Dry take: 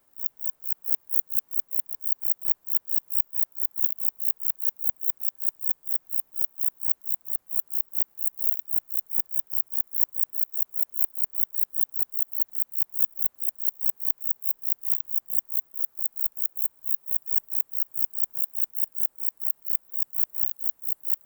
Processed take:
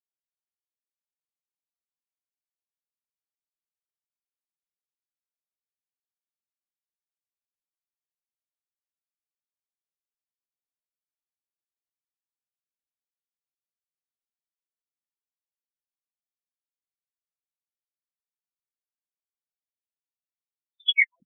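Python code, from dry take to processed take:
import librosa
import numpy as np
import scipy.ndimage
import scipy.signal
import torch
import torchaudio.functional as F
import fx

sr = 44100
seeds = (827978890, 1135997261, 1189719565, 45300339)

y = fx.tape_stop_end(x, sr, length_s=2.04)
y = fx.lpc_monotone(y, sr, seeds[0], pitch_hz=140.0, order=8)
y = fx.spectral_expand(y, sr, expansion=4.0)
y = F.gain(torch.from_numpy(y), -1.0).numpy()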